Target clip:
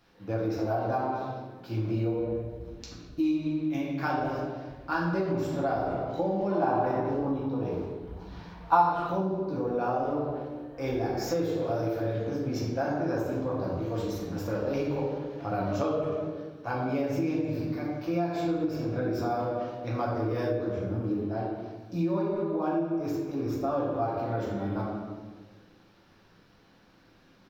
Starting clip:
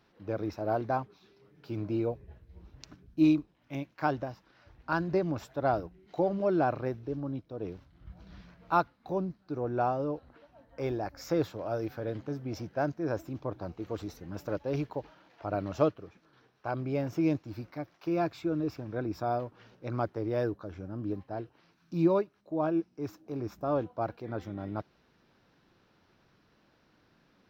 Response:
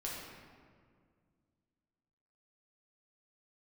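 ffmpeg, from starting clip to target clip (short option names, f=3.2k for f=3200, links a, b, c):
-filter_complex "[0:a]highshelf=f=3.9k:g=6,asplit=2[a][b];[b]adelay=210,highpass=300,lowpass=3.4k,asoftclip=type=hard:threshold=-21dB,volume=-14dB[c];[a][c]amix=inputs=2:normalize=0[d];[1:a]atrim=start_sample=2205,asetrate=70560,aresample=44100[e];[d][e]afir=irnorm=-1:irlink=0,acompressor=threshold=-33dB:ratio=6,asettb=1/sr,asplit=3[f][g][h];[f]atrim=end=6.514[i];[g]atrim=start=6.51:end=8.93,asetpts=PTS-STARTPTS,afade=t=in:d=0.004:c=qsin,afade=t=out:st=2.416:d=0.004:c=qsin,equalizer=f=910:w=2.7:g=11.5[j];[h]atrim=start=8.926[k];[i][j]acrossfade=d=0.004:c1=hsin:c2=qsin[l];[l][k]acrossfade=d=0.004:c1=qsin:c2=hsin,volume=8dB"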